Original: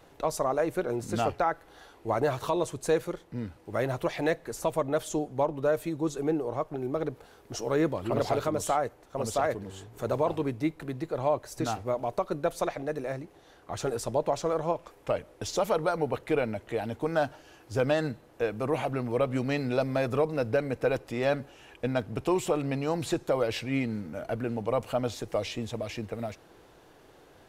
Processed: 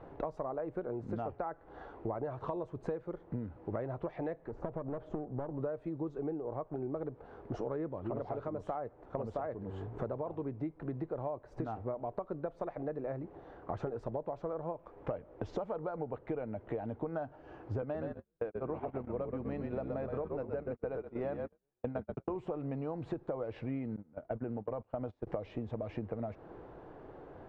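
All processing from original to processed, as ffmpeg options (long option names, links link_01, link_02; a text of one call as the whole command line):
ffmpeg -i in.wav -filter_complex "[0:a]asettb=1/sr,asplit=3[link_01][link_02][link_03];[link_01]atrim=end=4.484[link_04];[link_02]atrim=start=4.48:end=5.6,asetpts=PTS-STARTPTS,afade=type=in:duration=0.004:curve=qsin,afade=type=out:start_time=1.116:duration=0.004:curve=qsin,lowpass=frequency=1100:poles=1,acompressor=threshold=-33dB:ratio=2:attack=3.2:release=140:knee=1:detection=peak,aeval=exprs='clip(val(0),-1,0.0119)':channel_layout=same[link_05];[link_03]atrim=start=5.596[link_06];[link_04][link_05]acrossfade=duration=0.004:curve1=hsin:curve2=qsin[link_07];[link_07][link_06]acrossfade=duration=0.004:curve1=qsin:curve2=hsin,asettb=1/sr,asplit=3[link_08][link_09][link_10];[link_08]atrim=end=17.824[link_11];[link_09]atrim=start=17.82:end=22.37,asetpts=PTS-STARTPTS,afade=type=in:duration=0.004:curve=qsin,afade=type=out:start_time=4.546:duration=0.004:curve=qsin,lowshelf=frequency=65:gain=-6.5,asplit=6[link_12][link_13][link_14][link_15][link_16][link_17];[link_13]adelay=122,afreqshift=-48,volume=-5dB[link_18];[link_14]adelay=244,afreqshift=-96,volume=-12.3dB[link_19];[link_15]adelay=366,afreqshift=-144,volume=-19.7dB[link_20];[link_16]adelay=488,afreqshift=-192,volume=-27dB[link_21];[link_17]adelay=610,afreqshift=-240,volume=-34.3dB[link_22];[link_12][link_18][link_19][link_20][link_21][link_22]amix=inputs=6:normalize=0,atrim=end_sample=200655,agate=range=-47dB:threshold=-31dB:ratio=16:release=100:detection=peak[link_23];[link_10]atrim=start=22.366[link_24];[link_11][link_23]acrossfade=duration=0.004:curve1=hsin:curve2=qsin[link_25];[link_25][link_24]acrossfade=duration=0.004:curve1=qsin:curve2=hsin,asettb=1/sr,asplit=3[link_26][link_27][link_28];[link_26]atrim=end=23.964[link_29];[link_27]atrim=start=23.96:end=25.27,asetpts=PTS-STARTPTS,afade=type=in:duration=0.004:curve=qsin,afade=type=out:start_time=1.306:duration=0.004:curve=qsin,agate=range=-26dB:threshold=-34dB:ratio=16:release=100:detection=peak,acompressor=threshold=-33dB:ratio=2:attack=3.2:release=140:knee=1:detection=peak[link_30];[link_28]atrim=start=25.266[link_31];[link_29][link_30]acrossfade=duration=0.004:curve1=hsin:curve2=qsin[link_32];[link_32][link_31]acrossfade=duration=0.004:curve1=qsin:curve2=hsin,lowpass=1100,acompressor=threshold=-40dB:ratio=16,volume=6dB" out.wav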